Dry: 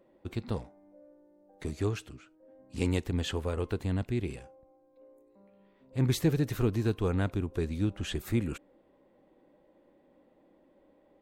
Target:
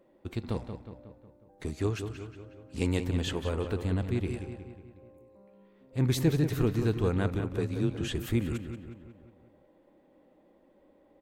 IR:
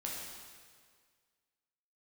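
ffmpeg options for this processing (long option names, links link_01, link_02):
-filter_complex "[0:a]asettb=1/sr,asplit=3[link_01][link_02][link_03];[link_01]atrim=end=7.394[link_04];[link_02]atrim=start=7.39:end=8.01,asetpts=PTS-STARTPTS,afade=type=in:duration=0.004:curve=qsin,afade=type=out:start_time=0.616:duration=0.004:curve=qsin,afreqshift=24[link_05];[link_03]atrim=start=8.006[link_06];[link_04][link_05]acrossfade=duration=0.004:curve1=hsin:curve2=qsin[link_07];[link_07][link_06]acrossfade=duration=0.004:curve1=qsin:curve2=hsin,asplit=2[link_08][link_09];[link_09]adelay=182,lowpass=frequency=3700:poles=1,volume=-8dB,asplit=2[link_10][link_11];[link_11]adelay=182,lowpass=frequency=3700:poles=1,volume=0.54,asplit=2[link_12][link_13];[link_13]adelay=182,lowpass=frequency=3700:poles=1,volume=0.54,asplit=2[link_14][link_15];[link_15]adelay=182,lowpass=frequency=3700:poles=1,volume=0.54,asplit=2[link_16][link_17];[link_17]adelay=182,lowpass=frequency=3700:poles=1,volume=0.54,asplit=2[link_18][link_19];[link_19]adelay=182,lowpass=frequency=3700:poles=1,volume=0.54[link_20];[link_08][link_10][link_12][link_14][link_16][link_18][link_20]amix=inputs=7:normalize=0,asplit=2[link_21][link_22];[1:a]atrim=start_sample=2205[link_23];[link_22][link_23]afir=irnorm=-1:irlink=0,volume=-22.5dB[link_24];[link_21][link_24]amix=inputs=2:normalize=0"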